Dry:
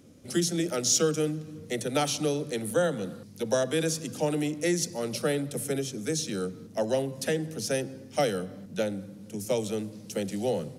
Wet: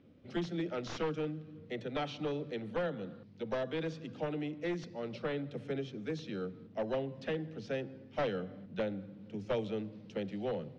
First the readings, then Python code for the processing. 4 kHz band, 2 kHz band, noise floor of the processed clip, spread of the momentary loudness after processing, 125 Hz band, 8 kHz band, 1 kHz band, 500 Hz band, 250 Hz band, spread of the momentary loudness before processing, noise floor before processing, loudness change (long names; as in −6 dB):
−13.5 dB, −7.5 dB, −54 dBFS, 6 LU, −8.0 dB, below −30 dB, −7.5 dB, −8.0 dB, −8.0 dB, 8 LU, −47 dBFS, −9.0 dB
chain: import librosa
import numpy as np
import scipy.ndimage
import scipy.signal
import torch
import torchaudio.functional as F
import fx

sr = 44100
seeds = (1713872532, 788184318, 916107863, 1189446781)

y = np.minimum(x, 2.0 * 10.0 ** (-21.5 / 20.0) - x)
y = scipy.signal.sosfilt(scipy.signal.butter(4, 3500.0, 'lowpass', fs=sr, output='sos'), y)
y = fx.rider(y, sr, range_db=10, speed_s=2.0)
y = y * 10.0 ** (-8.0 / 20.0)